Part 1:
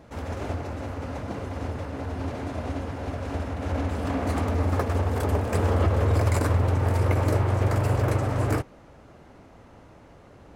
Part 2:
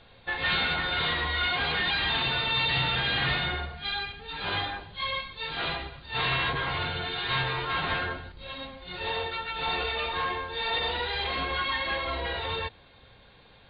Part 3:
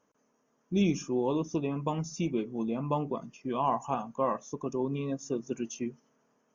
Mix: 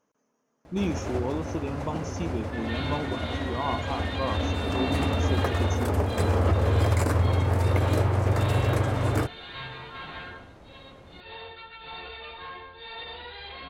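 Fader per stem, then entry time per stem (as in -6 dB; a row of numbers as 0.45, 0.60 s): -0.5, -10.5, -1.5 dB; 0.65, 2.25, 0.00 s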